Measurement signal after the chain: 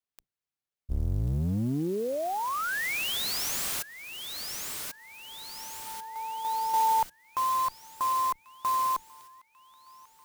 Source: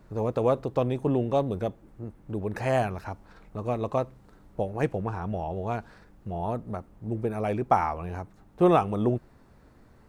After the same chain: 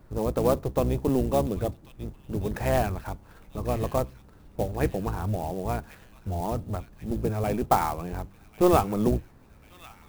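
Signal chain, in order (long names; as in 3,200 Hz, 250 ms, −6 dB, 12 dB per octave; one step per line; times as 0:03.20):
sub-octave generator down 1 octave, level 0 dB
delay with a high-pass on its return 1,091 ms, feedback 54%, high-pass 3,400 Hz, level −5 dB
converter with an unsteady clock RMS 0.032 ms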